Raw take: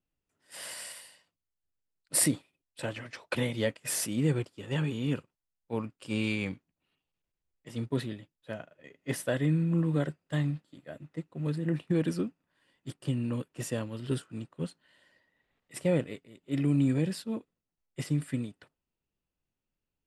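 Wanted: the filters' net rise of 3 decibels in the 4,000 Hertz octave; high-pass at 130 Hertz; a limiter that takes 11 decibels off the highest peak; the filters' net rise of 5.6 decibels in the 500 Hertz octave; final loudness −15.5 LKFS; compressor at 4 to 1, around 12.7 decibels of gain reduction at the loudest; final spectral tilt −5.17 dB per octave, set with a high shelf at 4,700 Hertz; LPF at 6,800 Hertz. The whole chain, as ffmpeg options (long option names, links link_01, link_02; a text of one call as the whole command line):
ffmpeg -i in.wav -af "highpass=130,lowpass=6800,equalizer=frequency=500:width_type=o:gain=6.5,equalizer=frequency=4000:width_type=o:gain=6,highshelf=frequency=4700:gain=-3,acompressor=threshold=-35dB:ratio=4,volume=28dB,alimiter=limit=-4dB:level=0:latency=1" out.wav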